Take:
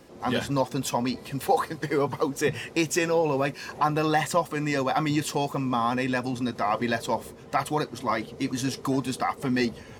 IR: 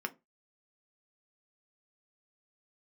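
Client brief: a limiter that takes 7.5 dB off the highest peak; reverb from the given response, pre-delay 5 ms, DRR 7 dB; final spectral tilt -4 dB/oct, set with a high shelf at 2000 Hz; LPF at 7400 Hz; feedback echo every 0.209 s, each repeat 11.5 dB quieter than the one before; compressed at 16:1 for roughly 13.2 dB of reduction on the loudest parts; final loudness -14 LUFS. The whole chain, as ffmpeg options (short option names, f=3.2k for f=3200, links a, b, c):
-filter_complex "[0:a]lowpass=7.4k,highshelf=f=2k:g=7.5,acompressor=threshold=-30dB:ratio=16,alimiter=level_in=0.5dB:limit=-24dB:level=0:latency=1,volume=-0.5dB,aecho=1:1:209|418|627:0.266|0.0718|0.0194,asplit=2[a][b];[1:a]atrim=start_sample=2205,adelay=5[c];[b][c]afir=irnorm=-1:irlink=0,volume=-10dB[d];[a][d]amix=inputs=2:normalize=0,volume=21dB"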